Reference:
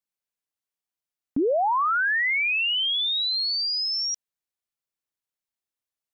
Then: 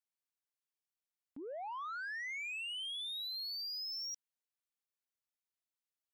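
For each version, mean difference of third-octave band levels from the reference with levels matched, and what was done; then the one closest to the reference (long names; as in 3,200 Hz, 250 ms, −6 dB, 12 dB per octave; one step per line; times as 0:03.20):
3.0 dB: brickwall limiter −29.5 dBFS, peak gain reduction 11 dB
low-shelf EQ 320 Hz −11.5 dB
soft clipping −31.5 dBFS, distortion −20 dB
level −6.5 dB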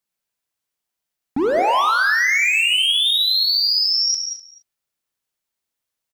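11.5 dB: dynamic equaliser 1,100 Hz, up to +3 dB, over −37 dBFS, Q 5.9
gain into a clipping stage and back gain 24 dB
single-tap delay 251 ms −18.5 dB
reverb whose tail is shaped and stops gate 240 ms flat, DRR 4.5 dB
level +7 dB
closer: first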